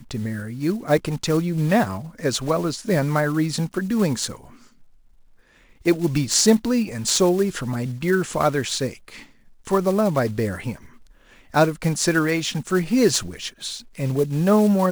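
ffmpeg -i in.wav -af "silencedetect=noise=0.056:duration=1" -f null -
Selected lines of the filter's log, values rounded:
silence_start: 4.33
silence_end: 5.86 | silence_duration: 1.53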